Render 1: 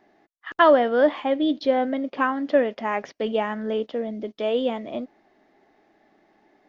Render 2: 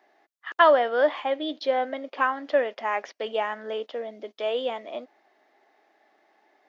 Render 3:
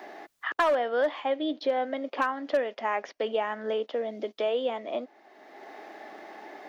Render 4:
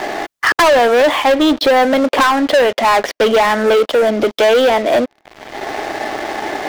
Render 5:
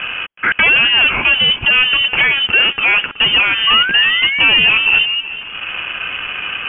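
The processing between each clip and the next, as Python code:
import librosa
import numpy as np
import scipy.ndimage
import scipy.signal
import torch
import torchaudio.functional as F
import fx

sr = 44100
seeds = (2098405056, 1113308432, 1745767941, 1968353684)

y1 = scipy.signal.sosfilt(scipy.signal.butter(2, 540.0, 'highpass', fs=sr, output='sos'), x)
y2 = fx.low_shelf(y1, sr, hz=470.0, db=5.5)
y2 = np.clip(y2, -10.0 ** (-12.0 / 20.0), 10.0 ** (-12.0 / 20.0))
y2 = fx.band_squash(y2, sr, depth_pct=70)
y2 = F.gain(torch.from_numpy(y2), -3.5).numpy()
y3 = fx.leveller(y2, sr, passes=5)
y3 = F.gain(torch.from_numpy(y3), 5.0).numpy()
y4 = fx.spec_paint(y3, sr, seeds[0], shape='fall', start_s=3.67, length_s=1.54, low_hz=430.0, high_hz=2200.0, level_db=-17.0)
y4 = fx.freq_invert(y4, sr, carrier_hz=3300)
y4 = fx.echo_feedback(y4, sr, ms=374, feedback_pct=36, wet_db=-15)
y4 = F.gain(torch.from_numpy(y4), -1.0).numpy()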